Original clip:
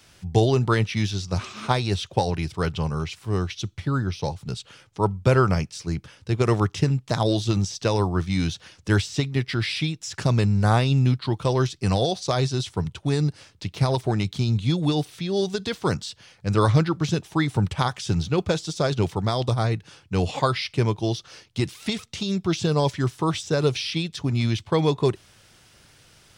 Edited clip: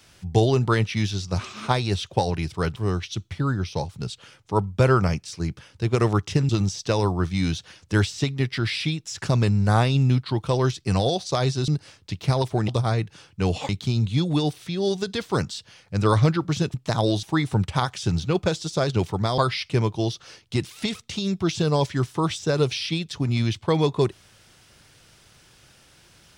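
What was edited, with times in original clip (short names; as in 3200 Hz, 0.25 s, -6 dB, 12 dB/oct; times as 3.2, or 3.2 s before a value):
2.76–3.23 cut
6.96–7.45 move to 17.26
12.64–13.21 cut
19.41–20.42 move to 14.21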